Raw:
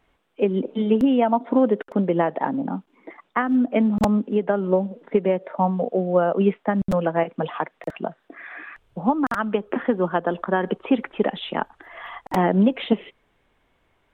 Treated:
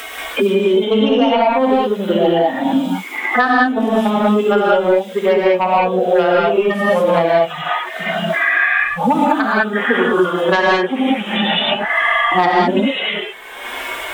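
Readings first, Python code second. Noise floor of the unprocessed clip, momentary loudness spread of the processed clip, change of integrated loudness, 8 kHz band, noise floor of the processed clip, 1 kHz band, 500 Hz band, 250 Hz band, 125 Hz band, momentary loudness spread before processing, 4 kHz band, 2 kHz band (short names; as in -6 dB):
-67 dBFS, 7 LU, +7.5 dB, n/a, -29 dBFS, +10.0 dB, +8.0 dB, +4.0 dB, +1.5 dB, 13 LU, +17.5 dB, +16.5 dB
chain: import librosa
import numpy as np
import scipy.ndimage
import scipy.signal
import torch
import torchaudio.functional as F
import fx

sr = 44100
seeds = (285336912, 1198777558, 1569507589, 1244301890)

y = fx.hpss_only(x, sr, part='harmonic')
y = fx.tilt_eq(y, sr, slope=4.5)
y = fx.fold_sine(y, sr, drive_db=8, ceiling_db=-7.5)
y = fx.bass_treble(y, sr, bass_db=-7, treble_db=4)
y = fx.rev_gated(y, sr, seeds[0], gate_ms=230, shape='rising', drr_db=-6.5)
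y = fx.band_squash(y, sr, depth_pct=100)
y = F.gain(torch.from_numpy(y), -2.5).numpy()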